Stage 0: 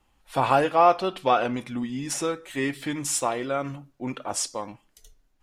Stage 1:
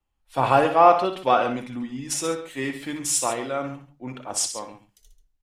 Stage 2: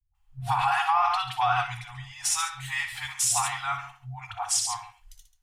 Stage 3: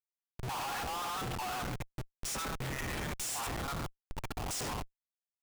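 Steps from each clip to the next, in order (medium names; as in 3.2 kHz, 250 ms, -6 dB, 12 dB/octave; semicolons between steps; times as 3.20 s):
hum notches 50/100/150/200 Hz; loudspeakers at several distances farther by 21 m -9 dB, 47 m -12 dB; three bands expanded up and down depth 40%
FFT band-reject 130–710 Hz; peak limiter -18.5 dBFS, peak gain reduction 11.5 dB; phase dispersion highs, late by 148 ms, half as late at 400 Hz; trim +4 dB
high-pass 220 Hz 6 dB/octave; level held to a coarse grid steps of 14 dB; Schmitt trigger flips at -38.5 dBFS; trim -3.5 dB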